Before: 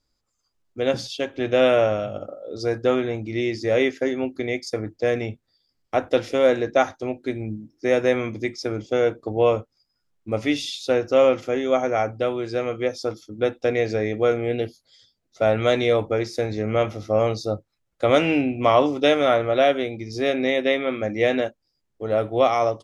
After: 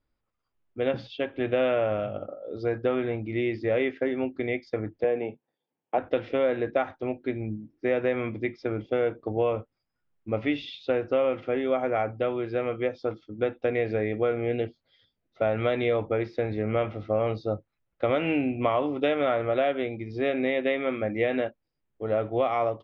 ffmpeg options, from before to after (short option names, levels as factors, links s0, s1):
-filter_complex "[0:a]asettb=1/sr,asplit=3[s0][s1][s2];[s0]atrim=end=5.044[s3];[s1]atrim=start=5.04:end=5.98,asetpts=PTS-STARTPTS,afade=t=in:d=0.004:c=qsin,afade=t=out:st=0.936:d=0.004:c=qsin,highpass=f=160:w=0.5412,highpass=f=160:w=1.3066,equalizer=f=210:t=q:w=4:g=-4,equalizer=f=460:t=q:w=4:g=4,equalizer=f=860:t=q:w=4:g=8,equalizer=f=1300:t=q:w=4:g=-9,equalizer=f=2000:t=q:w=4:g=-7,lowpass=f=2900:w=0.5412,lowpass=f=2900:w=1.3066[s4];[s2]atrim=start=5.976[s5];[s3][s4]acrossfade=d=0.004:c1=hsin:c2=qsin[s6];[s6][s5]acrossfade=d=0.004:c1=qsin:c2=hsin,lowpass=f=3100:w=0.5412,lowpass=f=3100:w=1.3066,acompressor=threshold=0.126:ratio=6,volume=0.75"